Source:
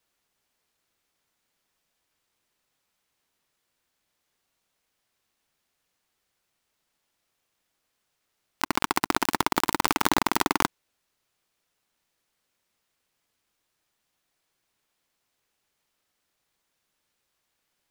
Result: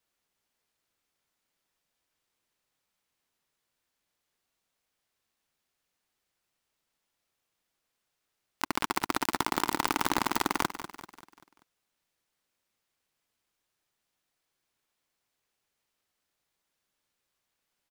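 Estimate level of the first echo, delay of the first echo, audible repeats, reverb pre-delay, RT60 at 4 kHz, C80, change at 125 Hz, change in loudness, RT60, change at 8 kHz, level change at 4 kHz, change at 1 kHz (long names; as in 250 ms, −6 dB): −12.0 dB, 194 ms, 4, no reverb audible, no reverb audible, no reverb audible, −4.5 dB, −4.5 dB, no reverb audible, −4.5 dB, −4.5 dB, −4.5 dB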